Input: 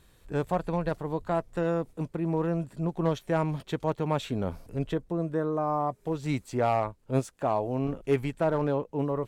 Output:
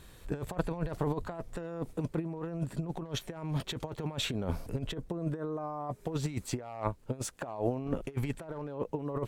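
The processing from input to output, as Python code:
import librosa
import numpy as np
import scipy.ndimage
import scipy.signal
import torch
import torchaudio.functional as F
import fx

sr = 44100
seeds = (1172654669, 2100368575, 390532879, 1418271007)

y = fx.over_compress(x, sr, threshold_db=-33.0, ratio=-0.5)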